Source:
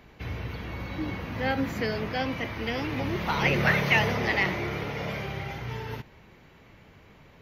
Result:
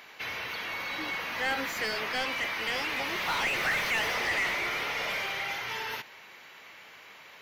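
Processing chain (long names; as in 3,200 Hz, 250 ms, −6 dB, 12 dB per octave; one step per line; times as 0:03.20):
first-order pre-emphasis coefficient 0.97
mid-hump overdrive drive 30 dB, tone 1,300 Hz, clips at −18 dBFS
level +2 dB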